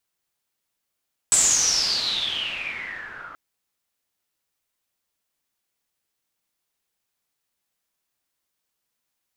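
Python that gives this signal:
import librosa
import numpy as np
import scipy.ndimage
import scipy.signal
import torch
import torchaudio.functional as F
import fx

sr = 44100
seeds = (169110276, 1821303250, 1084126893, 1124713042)

y = fx.riser_noise(sr, seeds[0], length_s=2.03, colour='white', kind='lowpass', start_hz=8000.0, end_hz=1300.0, q=12.0, swell_db=-15.0, law='exponential')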